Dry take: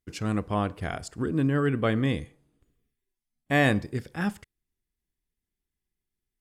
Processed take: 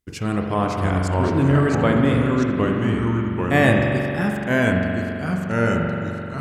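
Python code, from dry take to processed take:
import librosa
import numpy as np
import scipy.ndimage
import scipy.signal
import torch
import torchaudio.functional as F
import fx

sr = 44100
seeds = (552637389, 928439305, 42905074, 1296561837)

y = fx.dynamic_eq(x, sr, hz=4100.0, q=1.1, threshold_db=-44.0, ratio=4.0, max_db=-4)
y = fx.echo_pitch(y, sr, ms=538, semitones=-2, count=2, db_per_echo=-3.0)
y = fx.rev_spring(y, sr, rt60_s=3.0, pass_ms=(43,), chirp_ms=50, drr_db=1.0)
y = y * librosa.db_to_amplitude(5.0)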